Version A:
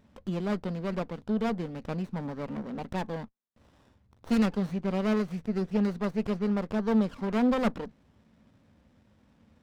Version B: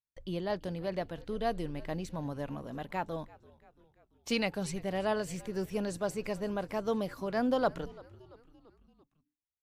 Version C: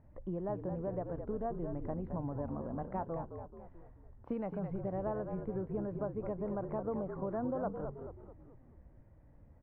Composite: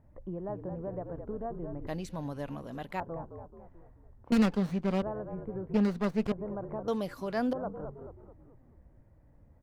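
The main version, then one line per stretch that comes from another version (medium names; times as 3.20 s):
C
1.87–3.00 s: from B
4.32–5.02 s: from A
5.74–6.32 s: from A
6.88–7.53 s: from B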